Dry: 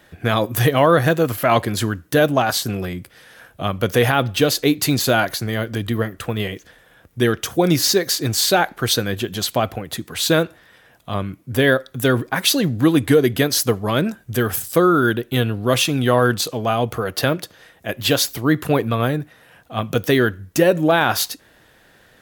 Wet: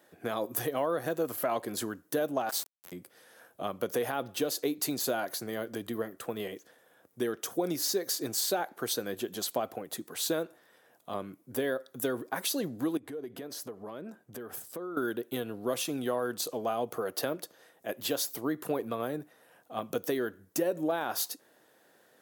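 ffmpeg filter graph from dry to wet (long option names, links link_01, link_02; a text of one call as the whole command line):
ffmpeg -i in.wav -filter_complex "[0:a]asettb=1/sr,asplit=3[link_01][link_02][link_03];[link_01]atrim=end=2.494[link_04];[link_02]atrim=start=2.49:end=2.92,asetpts=PTS-STARTPTS,afade=type=in:duration=0.004:curve=qsin,afade=type=out:start_time=0.426:duration=0.004:curve=qsin,highpass=850,highshelf=frequency=11000:gain=2.5,aeval=exprs='val(0)*gte(abs(val(0)),0.0596)':channel_layout=same[link_05];[link_03]atrim=start=2.916[link_06];[link_04][link_05]acrossfade=duration=0.004:curve1=hsin:curve2=qsin[link_07];[link_07][link_06]acrossfade=duration=0.004:curve1=qsin:curve2=hsin,asettb=1/sr,asplit=3[link_08][link_09][link_10];[link_08]atrim=end=12.974[link_11];[link_09]atrim=start=12.97:end=14.97,asetpts=PTS-STARTPTS,afade=type=in:duration=0.004:curve=qsin,afade=type=out:start_time=1.996:duration=0.004:curve=qsin,highshelf=frequency=4000:gain=-11,acompressor=threshold=-26dB:ratio=12:attack=3.2:release=140:knee=1:detection=peak[link_12];[link_10]atrim=start=14.966[link_13];[link_11][link_12]acrossfade=duration=0.004:curve1=hsin:curve2=qsin[link_14];[link_14][link_13]acrossfade=duration=0.004:curve1=qsin:curve2=hsin,acompressor=threshold=-17dB:ratio=6,highpass=320,equalizer=frequency=2500:width=0.55:gain=-10,volume=-5.5dB" out.wav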